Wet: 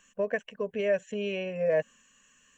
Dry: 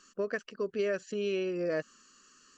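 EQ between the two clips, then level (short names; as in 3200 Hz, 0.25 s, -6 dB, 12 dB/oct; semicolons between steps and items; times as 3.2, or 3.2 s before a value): dynamic EQ 420 Hz, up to +7 dB, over -44 dBFS, Q 0.78; fixed phaser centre 1300 Hz, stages 6; +4.5 dB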